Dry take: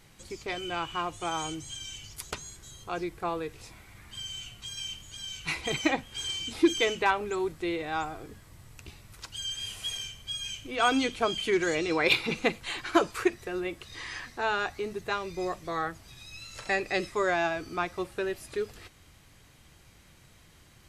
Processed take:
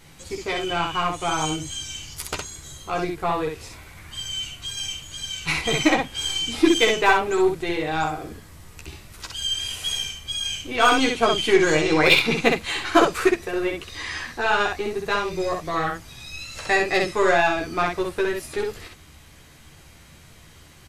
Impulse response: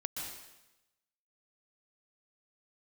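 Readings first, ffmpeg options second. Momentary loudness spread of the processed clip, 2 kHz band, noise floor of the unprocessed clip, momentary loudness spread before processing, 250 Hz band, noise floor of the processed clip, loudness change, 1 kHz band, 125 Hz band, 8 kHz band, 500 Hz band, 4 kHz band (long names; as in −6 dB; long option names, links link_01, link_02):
17 LU, +8.5 dB, −57 dBFS, 15 LU, +7.5 dB, −49 dBFS, +8.5 dB, +8.5 dB, +9.5 dB, +8.5 dB, +8.5 dB, +8.5 dB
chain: -af "aeval=exprs='0.237*(cos(1*acos(clip(val(0)/0.237,-1,1)))-cos(1*PI/2))+0.00944*(cos(8*acos(clip(val(0)/0.237,-1,1)))-cos(8*PI/2))':channel_layout=same,aecho=1:1:13|64:0.668|0.708,volume=5.5dB"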